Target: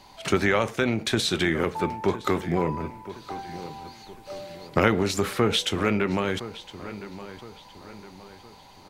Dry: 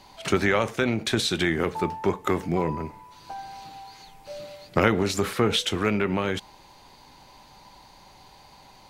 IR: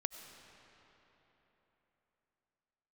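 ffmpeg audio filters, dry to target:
-filter_complex "[0:a]asplit=2[s0][s1];[s1]adelay=1014,lowpass=f=3500:p=1,volume=0.188,asplit=2[s2][s3];[s3]adelay=1014,lowpass=f=3500:p=1,volume=0.44,asplit=2[s4][s5];[s5]adelay=1014,lowpass=f=3500:p=1,volume=0.44,asplit=2[s6][s7];[s7]adelay=1014,lowpass=f=3500:p=1,volume=0.44[s8];[s0][s2][s4][s6][s8]amix=inputs=5:normalize=0"

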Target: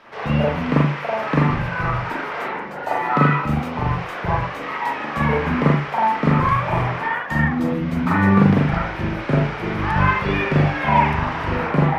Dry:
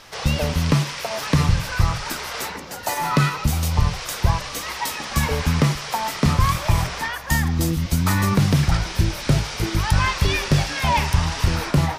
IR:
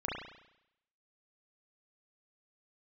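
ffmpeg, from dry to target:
-filter_complex "[0:a]acrossover=split=150 2800:gain=0.141 1 0.0708[s0][s1][s2];[s0][s1][s2]amix=inputs=3:normalize=0[s3];[1:a]atrim=start_sample=2205,atrim=end_sample=4410,asetrate=36162,aresample=44100[s4];[s3][s4]afir=irnorm=-1:irlink=0"

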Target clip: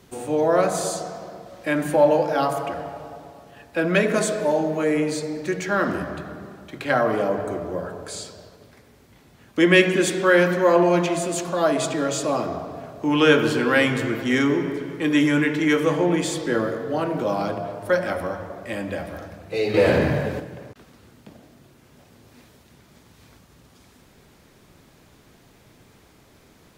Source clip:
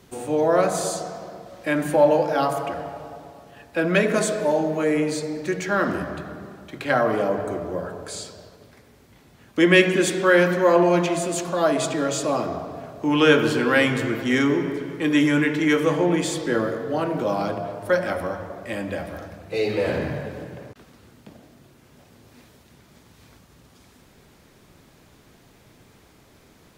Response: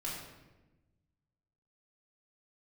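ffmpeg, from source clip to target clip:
-filter_complex "[0:a]asettb=1/sr,asplit=3[s0][s1][s2];[s0]atrim=end=19.744[s3];[s1]atrim=start=19.74:end=20.4,asetpts=PTS-STARTPTS,afade=t=in:d=0.004:c=qsin,afade=t=out:st=0.656:d=0.004:c=qsin,acontrast=72[s4];[s2]atrim=start=20.396[s5];[s3][s4]acrossfade=d=0.004:c1=hsin:c2=qsin[s6];[s6][s5]acrossfade=d=0.004:c1=qsin:c2=hsin"

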